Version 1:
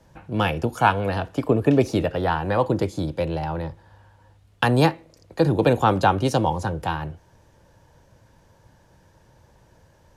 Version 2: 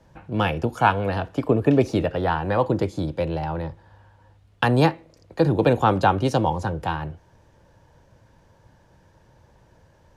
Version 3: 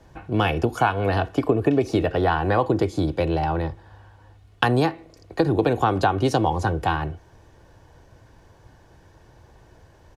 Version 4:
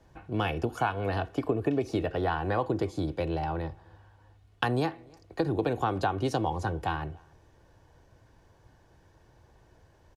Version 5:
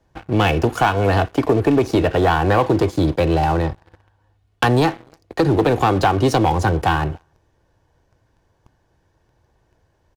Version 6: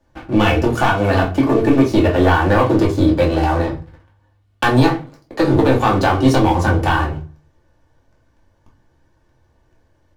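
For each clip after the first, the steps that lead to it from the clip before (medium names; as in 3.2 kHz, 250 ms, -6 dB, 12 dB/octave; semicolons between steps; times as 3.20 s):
treble shelf 6.4 kHz -8 dB
comb 2.7 ms, depth 37%; compression 10:1, threshold -19 dBFS, peak gain reduction 9 dB; trim +4 dB
echo from a far wall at 50 m, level -28 dB; trim -8 dB
waveshaping leveller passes 3; trim +3 dB
reverberation RT60 0.30 s, pre-delay 3 ms, DRR -2.5 dB; trim -2.5 dB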